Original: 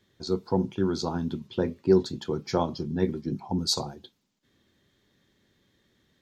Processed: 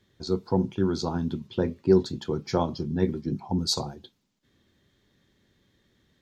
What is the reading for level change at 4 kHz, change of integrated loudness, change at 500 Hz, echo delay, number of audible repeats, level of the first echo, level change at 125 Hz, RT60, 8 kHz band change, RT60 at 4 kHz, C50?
-0.5 dB, +0.5 dB, +0.5 dB, none, none, none, +2.0 dB, none, -0.5 dB, none, none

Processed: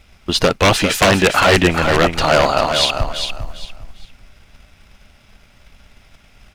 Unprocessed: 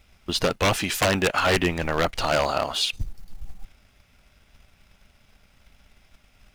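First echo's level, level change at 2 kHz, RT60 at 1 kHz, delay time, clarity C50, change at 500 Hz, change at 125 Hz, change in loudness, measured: -7.0 dB, +9.0 dB, none, 0.4 s, none, +9.5 dB, +9.0 dB, +8.5 dB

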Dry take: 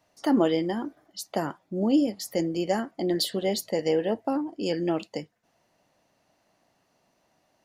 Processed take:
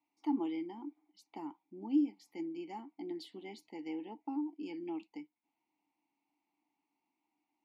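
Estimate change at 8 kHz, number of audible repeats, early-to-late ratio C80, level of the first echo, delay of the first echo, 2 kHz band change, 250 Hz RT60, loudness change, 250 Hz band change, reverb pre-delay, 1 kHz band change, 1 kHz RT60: under -25 dB, none, none, none, none, -17.5 dB, none, -12.5 dB, -10.0 dB, none, -13.5 dB, none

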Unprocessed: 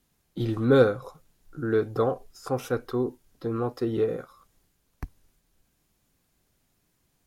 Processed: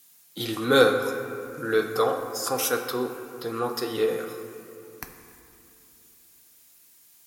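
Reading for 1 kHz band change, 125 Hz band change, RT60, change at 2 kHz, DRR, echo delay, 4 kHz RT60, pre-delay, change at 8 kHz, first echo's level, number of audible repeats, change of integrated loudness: +5.5 dB, -8.5 dB, 2.7 s, +8.5 dB, 4.0 dB, none, 1.7 s, 4 ms, +18.0 dB, none, none, +1.0 dB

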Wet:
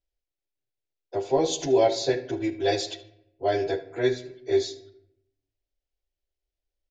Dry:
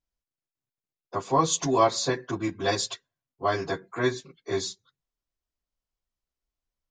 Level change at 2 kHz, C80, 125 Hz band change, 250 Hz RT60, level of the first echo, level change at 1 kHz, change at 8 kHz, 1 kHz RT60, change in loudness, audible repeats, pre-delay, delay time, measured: -3.0 dB, 16.5 dB, -3.0 dB, 1.0 s, -18.0 dB, -4.5 dB, -5.5 dB, 0.70 s, +1.0 dB, 1, 5 ms, 76 ms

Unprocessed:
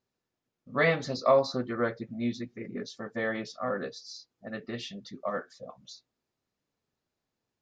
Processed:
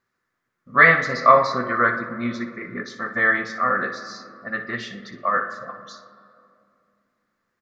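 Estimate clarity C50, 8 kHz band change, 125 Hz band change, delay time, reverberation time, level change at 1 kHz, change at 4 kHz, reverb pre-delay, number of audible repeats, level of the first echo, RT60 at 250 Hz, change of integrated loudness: 8.5 dB, n/a, +4.5 dB, 60 ms, 2.5 s, +15.0 dB, +3.5 dB, 6 ms, 1, -12.5 dB, 3.2 s, +11.0 dB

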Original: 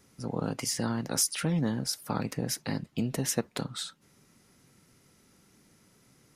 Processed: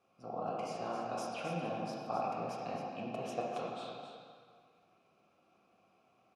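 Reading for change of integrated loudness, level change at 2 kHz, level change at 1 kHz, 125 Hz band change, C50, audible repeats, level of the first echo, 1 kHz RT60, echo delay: -8.5 dB, -8.0 dB, +3.5 dB, -15.0 dB, -1.5 dB, 1, -8.0 dB, 1.9 s, 0.266 s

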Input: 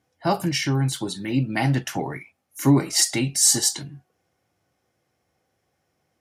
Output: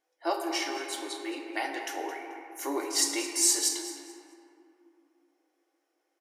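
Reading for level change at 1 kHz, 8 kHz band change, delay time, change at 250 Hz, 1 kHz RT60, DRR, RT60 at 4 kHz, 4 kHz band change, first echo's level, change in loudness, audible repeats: -5.0 dB, -6.0 dB, 0.217 s, -13.0 dB, 2.7 s, 2.5 dB, 1.4 s, -6.0 dB, -13.5 dB, -8.0 dB, 1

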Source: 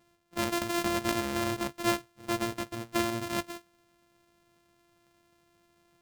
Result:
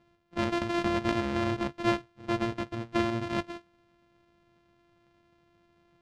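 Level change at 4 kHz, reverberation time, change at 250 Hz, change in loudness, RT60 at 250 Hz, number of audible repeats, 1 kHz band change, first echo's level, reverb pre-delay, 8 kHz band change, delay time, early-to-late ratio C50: -3.0 dB, none, +2.5 dB, +1.0 dB, none, none, +0.5 dB, none, none, -12.0 dB, none, none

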